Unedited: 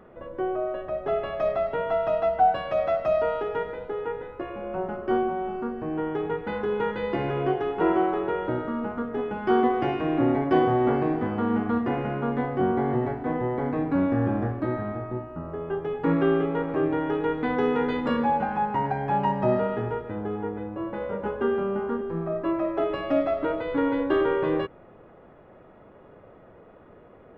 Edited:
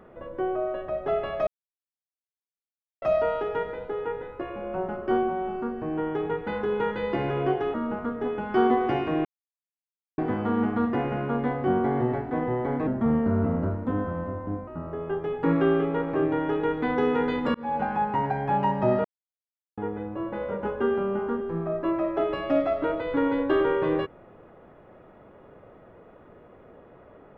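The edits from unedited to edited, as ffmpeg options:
-filter_complex "[0:a]asplit=11[a][b][c][d][e][f][g][h][i][j][k];[a]atrim=end=1.47,asetpts=PTS-STARTPTS,afade=t=out:st=1.466:d=0.004:c=hsin[l];[b]atrim=start=1.47:end=3.02,asetpts=PTS-STARTPTS,volume=0[m];[c]atrim=start=3.02:end=7.742,asetpts=PTS-STARTPTS,afade=t=in:d=0.004:c=hsin[n];[d]atrim=start=8.668:end=10.18,asetpts=PTS-STARTPTS,afade=t=out:st=1.508:d=0.004:c=hsin[o];[e]atrim=start=10.18:end=11.11,asetpts=PTS-STARTPTS,volume=0[p];[f]atrim=start=11.11:end=13.804,asetpts=PTS-STARTPTS,afade=t=in:d=0.004:c=hsin[q];[g]atrim=start=13.8:end=15.28,asetpts=PTS-STARTPTS,asetrate=36162,aresample=44100,atrim=end_sample=79595,asetpts=PTS-STARTPTS[r];[h]atrim=start=15.276:end=18.15,asetpts=PTS-STARTPTS,afade=t=out:st=2.87:d=0.004:c=hsin[s];[i]atrim=start=18.15:end=19.65,asetpts=PTS-STARTPTS,afade=t=in:d=0.3,afade=t=out:st=1.496:d=0.004:c=hsin[t];[j]atrim=start=19.65:end=20.38,asetpts=PTS-STARTPTS,volume=0[u];[k]atrim=start=20.38,asetpts=PTS-STARTPTS,afade=t=in:d=0.004:c=hsin[v];[l][m][n]concat=n=3:v=0:a=1[w];[o][p][q]concat=n=3:v=0:a=1[x];[w][x]acrossfade=d=0.004:c1=hsin:c2=hsin[y];[y][r]acrossfade=d=0.004:c1=hsin:c2=hsin[z];[s][t][u][v]concat=n=4:v=0:a=1[aa];[z][aa]acrossfade=d=0.004:c1=hsin:c2=hsin"

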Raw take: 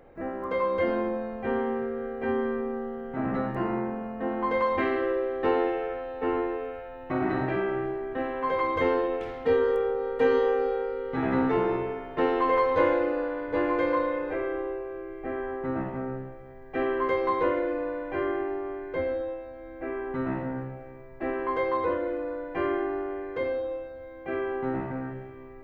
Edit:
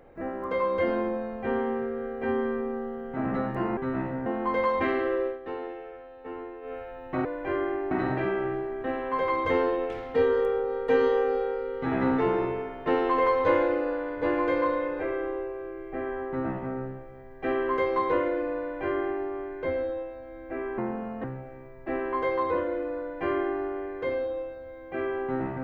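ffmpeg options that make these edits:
-filter_complex "[0:a]asplit=9[a][b][c][d][e][f][g][h][i];[a]atrim=end=3.772[j];[b]atrim=start=20.088:end=20.582[k];[c]atrim=start=4.228:end=5.36,asetpts=PTS-STARTPTS,afade=t=out:st=1.002:d=0.13:silence=0.281838[l];[d]atrim=start=5.36:end=6.58,asetpts=PTS-STARTPTS,volume=-11dB[m];[e]atrim=start=6.58:end=7.222,asetpts=PTS-STARTPTS,afade=t=in:d=0.13:silence=0.281838[n];[f]atrim=start=17.918:end=18.582[o];[g]atrim=start=7.218:end=20.092[p];[h]atrim=start=3.768:end=4.232[q];[i]atrim=start=20.578[r];[j][k]acrossfade=d=0.004:c1=hsin:c2=hsin[s];[l][m][n]concat=n=3:v=0:a=1[t];[s][t]acrossfade=d=0.004:c1=hsin:c2=hsin[u];[u][o]acrossfade=d=0.004:c1=hsin:c2=hsin[v];[v][p]acrossfade=d=0.004:c1=hsin:c2=hsin[w];[w][q]acrossfade=d=0.004:c1=hsin:c2=hsin[x];[x][r]acrossfade=d=0.004:c1=hsin:c2=hsin"

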